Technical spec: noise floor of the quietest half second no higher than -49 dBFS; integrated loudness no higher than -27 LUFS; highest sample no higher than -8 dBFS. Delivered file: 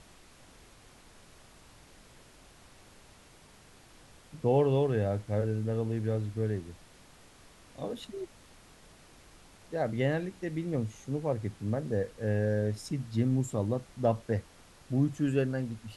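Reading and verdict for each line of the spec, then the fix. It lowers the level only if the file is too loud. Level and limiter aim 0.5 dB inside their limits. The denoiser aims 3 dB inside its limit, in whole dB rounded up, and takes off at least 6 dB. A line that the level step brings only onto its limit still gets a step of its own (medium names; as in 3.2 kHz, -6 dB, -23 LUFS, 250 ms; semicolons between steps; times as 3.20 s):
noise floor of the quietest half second -57 dBFS: pass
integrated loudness -31.5 LUFS: pass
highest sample -14.5 dBFS: pass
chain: none needed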